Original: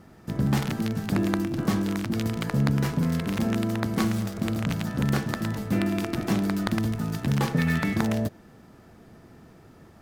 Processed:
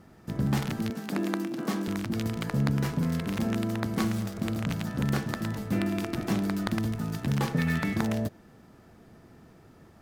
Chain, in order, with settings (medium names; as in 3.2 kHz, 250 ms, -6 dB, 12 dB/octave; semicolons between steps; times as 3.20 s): 0.90–1.88 s: high-pass 200 Hz 24 dB/octave; trim -3 dB